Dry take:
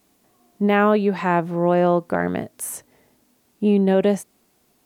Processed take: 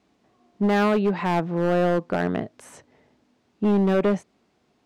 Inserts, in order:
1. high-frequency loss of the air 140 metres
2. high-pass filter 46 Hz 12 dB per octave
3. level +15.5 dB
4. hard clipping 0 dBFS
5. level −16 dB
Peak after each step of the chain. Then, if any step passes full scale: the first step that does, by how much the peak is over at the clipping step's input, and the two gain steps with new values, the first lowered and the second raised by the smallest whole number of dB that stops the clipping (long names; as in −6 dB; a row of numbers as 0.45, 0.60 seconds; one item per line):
−7.0, −6.5, +9.0, 0.0, −16.0 dBFS
step 3, 9.0 dB
step 3 +6.5 dB, step 5 −7 dB